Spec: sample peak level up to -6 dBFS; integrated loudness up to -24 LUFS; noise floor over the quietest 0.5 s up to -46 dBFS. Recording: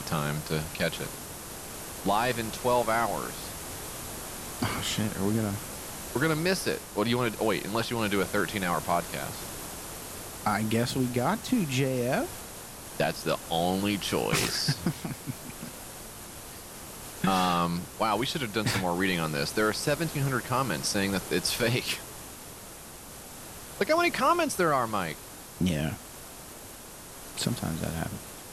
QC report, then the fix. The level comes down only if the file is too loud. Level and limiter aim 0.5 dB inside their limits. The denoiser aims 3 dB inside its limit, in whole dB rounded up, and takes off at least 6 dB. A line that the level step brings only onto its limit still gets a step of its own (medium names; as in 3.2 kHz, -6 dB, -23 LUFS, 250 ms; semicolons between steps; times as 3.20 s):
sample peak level -13.5 dBFS: pass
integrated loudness -29.0 LUFS: pass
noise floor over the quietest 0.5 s -45 dBFS: fail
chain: noise reduction 6 dB, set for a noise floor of -45 dBFS